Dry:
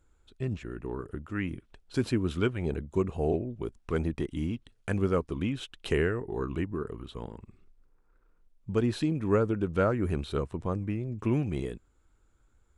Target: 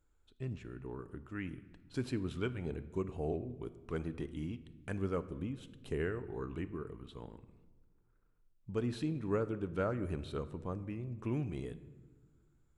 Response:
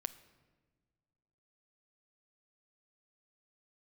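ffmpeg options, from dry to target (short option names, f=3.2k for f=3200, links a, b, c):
-filter_complex "[0:a]asplit=3[a][b][c];[a]afade=t=out:st=5.22:d=0.02[d];[b]equalizer=f=2.6k:w=0.36:g=-8.5,afade=t=in:st=5.22:d=0.02,afade=t=out:st=5.99:d=0.02[e];[c]afade=t=in:st=5.99:d=0.02[f];[d][e][f]amix=inputs=3:normalize=0[g];[1:a]atrim=start_sample=2205[h];[g][h]afir=irnorm=-1:irlink=0,volume=-7dB"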